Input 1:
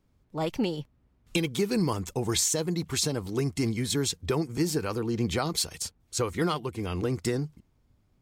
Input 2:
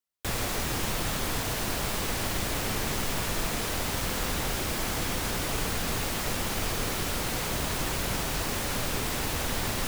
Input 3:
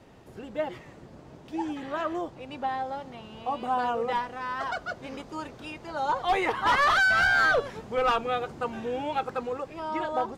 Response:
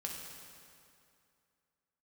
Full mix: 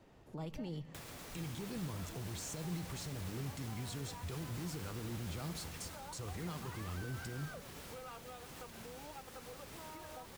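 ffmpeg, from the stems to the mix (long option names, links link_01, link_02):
-filter_complex "[0:a]acrossover=split=160[link_01][link_02];[link_02]acompressor=threshold=-45dB:ratio=2.5[link_03];[link_01][link_03]amix=inputs=2:normalize=0,alimiter=level_in=11dB:limit=-24dB:level=0:latency=1,volume=-11dB,volume=-3dB,asplit=3[link_04][link_05][link_06];[link_05]volume=-10dB[link_07];[1:a]alimiter=limit=-21dB:level=0:latency=1:release=102,adelay=700,volume=-14dB,asplit=2[link_08][link_09];[link_09]volume=-14dB[link_10];[2:a]volume=-10dB[link_11];[link_06]apad=whole_len=457695[link_12];[link_11][link_12]sidechaincompress=threshold=-56dB:ratio=8:attack=16:release=107[link_13];[link_08][link_13]amix=inputs=2:normalize=0,highpass=49,acompressor=threshold=-49dB:ratio=6,volume=0dB[link_14];[3:a]atrim=start_sample=2205[link_15];[link_07][link_10]amix=inputs=2:normalize=0[link_16];[link_16][link_15]afir=irnorm=-1:irlink=0[link_17];[link_04][link_14][link_17]amix=inputs=3:normalize=0"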